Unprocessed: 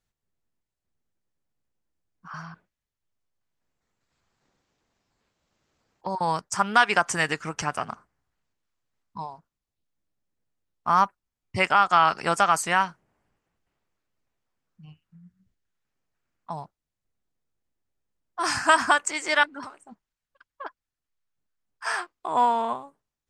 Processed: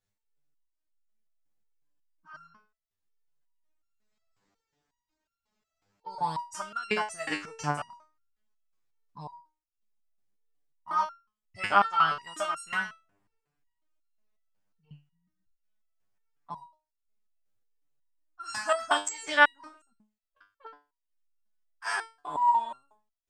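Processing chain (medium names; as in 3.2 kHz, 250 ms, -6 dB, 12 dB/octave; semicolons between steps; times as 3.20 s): resonator arpeggio 5.5 Hz 100–1400 Hz; trim +6.5 dB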